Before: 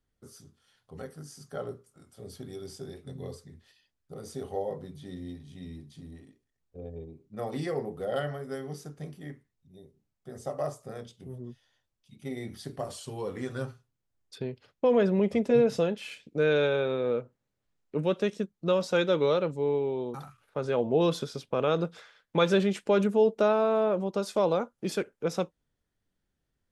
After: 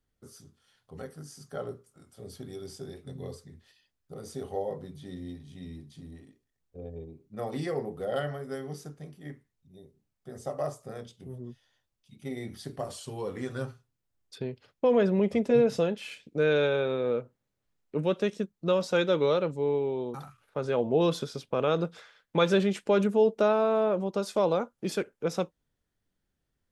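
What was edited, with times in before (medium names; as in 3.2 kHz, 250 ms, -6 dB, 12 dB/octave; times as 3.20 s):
8.97–9.25 s: gain -4 dB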